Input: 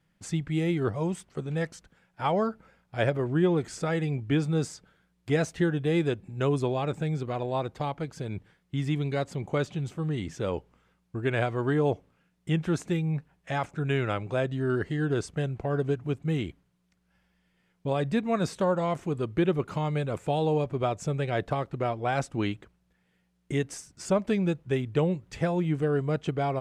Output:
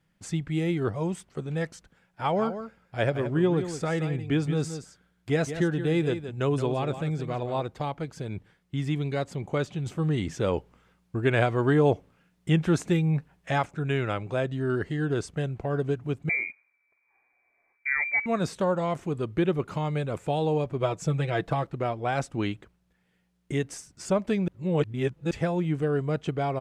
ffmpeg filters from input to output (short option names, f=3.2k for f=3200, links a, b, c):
-filter_complex "[0:a]asplit=3[a][b][c];[a]afade=t=out:st=2.28:d=0.02[d];[b]aecho=1:1:173:0.316,afade=t=in:st=2.28:d=0.02,afade=t=out:st=7.62:d=0.02[e];[c]afade=t=in:st=7.62:d=0.02[f];[d][e][f]amix=inputs=3:normalize=0,asettb=1/sr,asplit=3[g][h][i];[g]atrim=end=16.294[j];[h]atrim=start=16.29:end=18.26,asetpts=PTS-STARTPTS,afade=t=in:d=0.004:c=qsin,afade=t=out:st=1.966:d=0.004:c=qsin,lowpass=f=2.1k:t=q:w=0.5098,lowpass=f=2.1k:t=q:w=0.6013,lowpass=f=2.1k:t=q:w=0.9,lowpass=f=2.1k:t=q:w=2.563,afreqshift=-2500[k];[i]atrim=start=18.256[l];[j][k]acrossfade=d=0.004:c1=hsin:c2=qsin[m];[m][l]acrossfade=d=0.004:c1=qsin:c2=hsin,asettb=1/sr,asplit=3[n][o][p];[n]atrim=end=20.804[q];[o]atrim=start=20.8:end=21.67,asetpts=PTS-STARTPTS,afade=t=in:d=0.004:c=qsin,afade=t=out:st=0.866:d=0.004:c=qsin,aecho=1:1:6.1:0.65,atrim=end_sample=38367[r];[p]atrim=start=21.666[s];[q][r]acrossfade=d=0.004:c1=hsin:c2=qsin[t];[t][s]acrossfade=d=0.004:c1=qsin:c2=hsin,asplit=5[u][v][w][x][y];[u]atrim=end=9.862[z];[v]atrim=start=9.858:end=13.622,asetpts=PTS-STARTPTS,volume=4dB[aa];[w]atrim=start=13.618:end=24.482[ab];[x]atrim=start=24.478:end=25.312,asetpts=PTS-STARTPTS,areverse[ac];[y]atrim=start=25.308[ad];[z][aa]acrossfade=d=0.004:c1=hsin:c2=hsin[ae];[ae][ab]acrossfade=d=0.004:c1=hsin:c2=hsin[af];[af][ac]acrossfade=d=0.004:c1=hsin:c2=hsin[ag];[ag][ad]acrossfade=d=0.004:c1=hsin:c2=hsin"